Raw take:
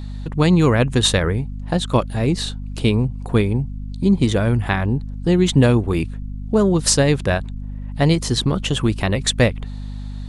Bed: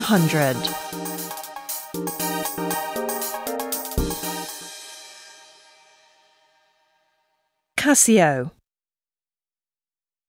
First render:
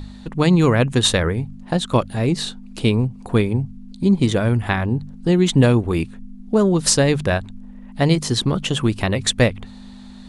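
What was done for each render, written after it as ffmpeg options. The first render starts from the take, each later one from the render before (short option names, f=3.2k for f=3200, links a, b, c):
-af "bandreject=f=50:t=h:w=4,bandreject=f=100:t=h:w=4,bandreject=f=150:t=h:w=4"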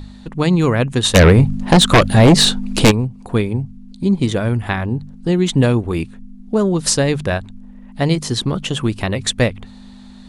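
-filter_complex "[0:a]asplit=3[a][b][c];[a]afade=t=out:st=1.14:d=0.02[d];[b]aeval=exprs='0.631*sin(PI/2*3.55*val(0)/0.631)':c=same,afade=t=in:st=1.14:d=0.02,afade=t=out:st=2.9:d=0.02[e];[c]afade=t=in:st=2.9:d=0.02[f];[d][e][f]amix=inputs=3:normalize=0"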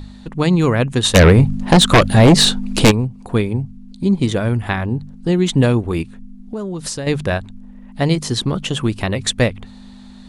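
-filter_complex "[0:a]asettb=1/sr,asplit=3[a][b][c];[a]atrim=end=6.024[d];[b]atrim=start=6.02:end=7.07,asetpts=PTS-STARTPTS,afade=t=in:d=0.004:c=qsin,afade=t=out:st=1.046:d=0.004:c=qsin,acompressor=threshold=-25dB:ratio=3:attack=3.2:release=140:knee=1:detection=peak[e];[c]atrim=start=7.066[f];[d][e]acrossfade=d=0.004:c1=hsin:c2=qsin[g];[g][f]acrossfade=d=0.004:c1=qsin:c2=hsin"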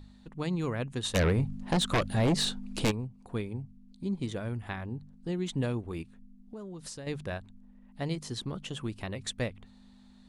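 -af "volume=-17dB"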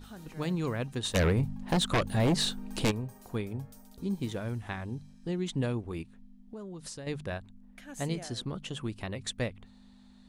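-filter_complex "[1:a]volume=-30dB[a];[0:a][a]amix=inputs=2:normalize=0"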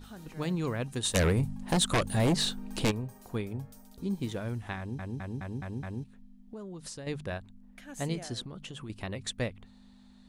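-filter_complex "[0:a]asettb=1/sr,asplit=3[a][b][c];[a]atrim=end=0.864[d];[b]atrim=start=0.86:end=2.33,asetpts=PTS-STARTPTS,afade=t=in:d=0.004:c=qsin,afade=t=out:st=1.466:d=0.004:c=qsin,equalizer=f=9.3k:t=o:w=1.1:g=8.5[e];[c]atrim=start=2.326[f];[d][e]acrossfade=d=0.004:c1=hsin:c2=qsin[g];[g][f]acrossfade=d=0.004:c1=qsin:c2=hsin,asettb=1/sr,asplit=3[h][i][j];[h]atrim=end=8.454[k];[i]atrim=start=8.45:end=8.9,asetpts=PTS-STARTPTS,afade=t=in:d=0.004:c=qsin,afade=t=out:st=0.446:d=0.004:c=qsin,acompressor=threshold=-38dB:ratio=6:attack=3.2:release=140:knee=1:detection=peak[l];[j]atrim=start=8.896[m];[k][l]acrossfade=d=0.004:c1=hsin:c2=qsin[n];[n][m]acrossfade=d=0.004:c1=qsin:c2=hsin,asplit=7[o][p][q][r][s][t][u];[o]atrim=end=4.992[v];[p]atrim=start=4.778:end=4.992[w];[q]atrim=start=4.778:end=4.992[x];[r]atrim=start=4.778:end=4.992[y];[s]atrim=start=4.778:end=4.992[z];[t]atrim=start=4.778:end=4.992[aa];[u]atrim=start=6.038[ab];[v][w]acrossfade=d=0.004:c1=hsin:c2=hsin[ac];[ac][x]acrossfade=d=0.004:c1=hsin:c2=hsin[ad];[ad][y]acrossfade=d=0.004:c1=hsin:c2=hsin[ae];[ae][z]acrossfade=d=0.004:c1=hsin:c2=hsin[af];[af][aa]acrossfade=d=0.004:c1=hsin:c2=hsin[ag];[ag][ab]acrossfade=d=0.004:c1=hsin:c2=hsin"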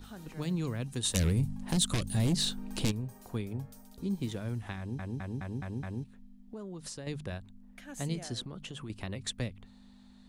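-filter_complex "[0:a]acrossover=split=290|3000[a][b][c];[b]acompressor=threshold=-41dB:ratio=6[d];[a][d][c]amix=inputs=3:normalize=0"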